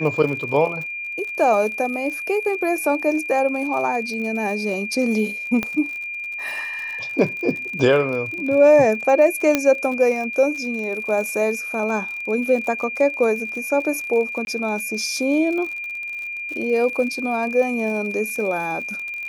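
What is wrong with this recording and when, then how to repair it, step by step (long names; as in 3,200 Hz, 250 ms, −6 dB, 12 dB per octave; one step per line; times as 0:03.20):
surface crackle 50 per second −29 dBFS
whistle 2,400 Hz −27 dBFS
0:05.63: click −10 dBFS
0:09.55: click −3 dBFS
0:14.45–0:14.47: drop-out 21 ms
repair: click removal
notch filter 2,400 Hz, Q 30
repair the gap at 0:14.45, 21 ms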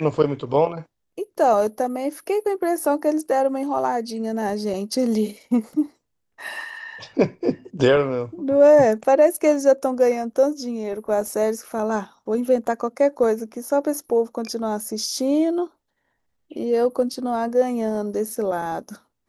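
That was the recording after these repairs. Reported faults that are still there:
0:09.55: click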